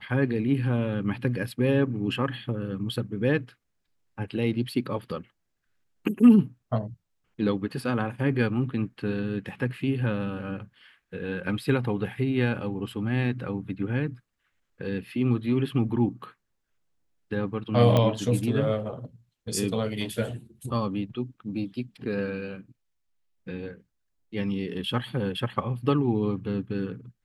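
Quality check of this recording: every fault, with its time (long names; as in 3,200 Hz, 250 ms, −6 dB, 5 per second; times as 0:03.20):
0:17.97: click −11 dBFS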